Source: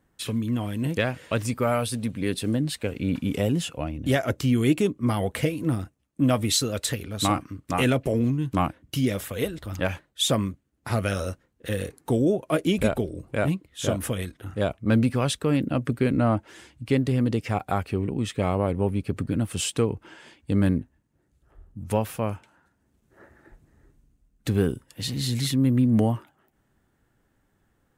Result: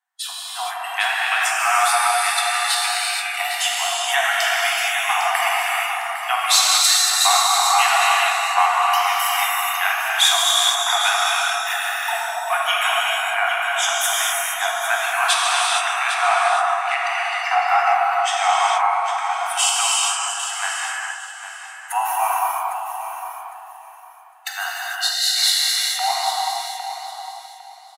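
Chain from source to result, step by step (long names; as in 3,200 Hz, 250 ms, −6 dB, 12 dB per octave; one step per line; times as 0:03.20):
feedback delay that plays each chunk backwards 162 ms, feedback 74%, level −9 dB
Chebyshev high-pass filter 690 Hz, order 10
in parallel at +2.5 dB: downward compressor, threshold −32 dBFS, peak gain reduction 12 dB
on the sum: noise reduction from a noise print of the clip's start 15 dB
on a send: repeating echo 805 ms, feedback 23%, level −10 dB
on the sum: automatic gain control gain up to 5.5 dB
reverb whose tail is shaped and stops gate 490 ms flat, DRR −4.5 dB
level −1 dB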